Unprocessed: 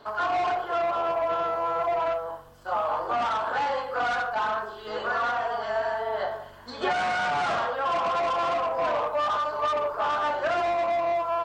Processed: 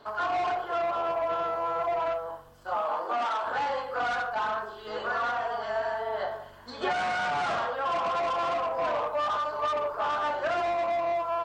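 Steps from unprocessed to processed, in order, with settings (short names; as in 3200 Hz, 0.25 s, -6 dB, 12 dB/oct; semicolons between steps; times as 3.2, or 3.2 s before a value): 2.75–3.43 HPF 120 Hz -> 330 Hz 24 dB/oct; gain -2.5 dB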